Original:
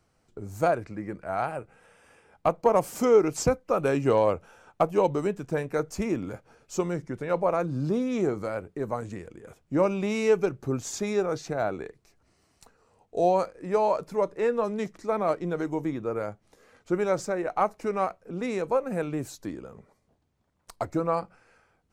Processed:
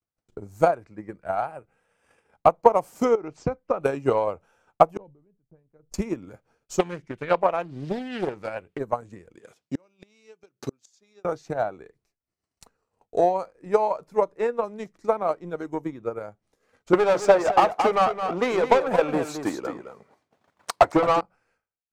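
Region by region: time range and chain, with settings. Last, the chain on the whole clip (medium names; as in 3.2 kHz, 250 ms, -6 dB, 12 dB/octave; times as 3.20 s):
3.15–3.81 s: compression, threshold -22 dBFS + distance through air 130 m
4.97–5.94 s: tilt EQ -4.5 dB/octave + inverted gate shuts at -21 dBFS, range -35 dB + decay stretcher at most 72 dB/s
6.79–8.79 s: peaking EQ 2.8 kHz +12.5 dB 1.1 oct + loudspeaker Doppler distortion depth 0.45 ms
9.35–11.25 s: high-pass 170 Hz + peaking EQ 4.4 kHz +12.5 dB 1.9 oct + inverted gate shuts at -20 dBFS, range -28 dB
16.93–21.21 s: high-pass 72 Hz + overdrive pedal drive 26 dB, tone 3.1 kHz, clips at -11.5 dBFS + delay 218 ms -6 dB
whole clip: dynamic bell 830 Hz, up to +6 dB, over -35 dBFS, Q 1.2; transient shaper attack +11 dB, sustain -4 dB; expander -56 dBFS; trim -6.5 dB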